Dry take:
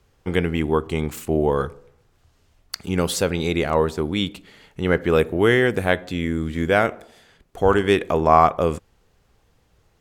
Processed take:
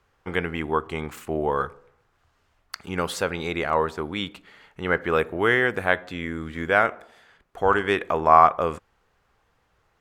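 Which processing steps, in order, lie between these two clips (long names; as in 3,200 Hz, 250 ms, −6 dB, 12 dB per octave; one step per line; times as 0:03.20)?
parametric band 1,300 Hz +12 dB 2.3 octaves
level −9.5 dB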